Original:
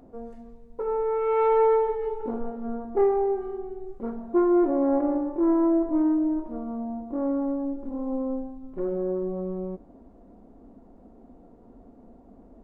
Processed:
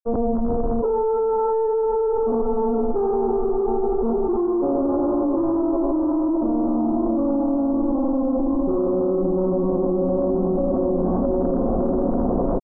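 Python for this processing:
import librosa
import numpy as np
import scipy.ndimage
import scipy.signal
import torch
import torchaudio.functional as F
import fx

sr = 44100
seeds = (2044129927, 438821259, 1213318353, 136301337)

p1 = fx.dmg_crackle(x, sr, seeds[0], per_s=49.0, level_db=-33.0)
p2 = fx.rider(p1, sr, range_db=10, speed_s=0.5)
p3 = p1 + F.gain(torch.from_numpy(p2), -2.0).numpy()
p4 = fx.echo_diffused(p3, sr, ms=589, feedback_pct=58, wet_db=-5.5)
p5 = 10.0 ** (-15.5 / 20.0) * np.tanh(p4 / 10.0 ** (-15.5 / 20.0))
p6 = scipy.signal.sosfilt(scipy.signal.butter(8, 1200.0, 'lowpass', fs=sr, output='sos'), p5)
p7 = fx.granulator(p6, sr, seeds[1], grain_ms=100.0, per_s=20.0, spray_ms=100.0, spread_st=0)
p8 = fx.env_flatten(p7, sr, amount_pct=100)
y = F.gain(torch.from_numpy(p8), -2.0).numpy()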